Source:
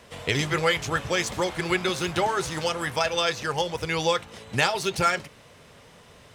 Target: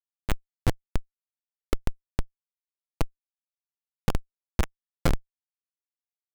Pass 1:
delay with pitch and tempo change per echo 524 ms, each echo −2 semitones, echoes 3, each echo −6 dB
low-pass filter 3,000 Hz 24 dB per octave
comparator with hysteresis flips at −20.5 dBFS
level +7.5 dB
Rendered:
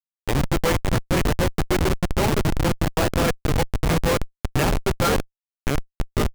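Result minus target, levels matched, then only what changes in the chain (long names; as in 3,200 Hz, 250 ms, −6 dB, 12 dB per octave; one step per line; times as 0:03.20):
comparator with hysteresis: distortion −26 dB
change: comparator with hysteresis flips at −13 dBFS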